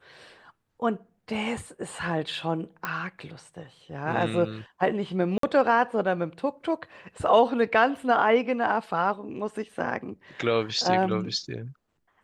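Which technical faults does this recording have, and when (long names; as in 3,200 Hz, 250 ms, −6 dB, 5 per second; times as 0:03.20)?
0:02.85: click −15 dBFS
0:05.38–0:05.43: drop-out 53 ms
0:07.97: drop-out 2.4 ms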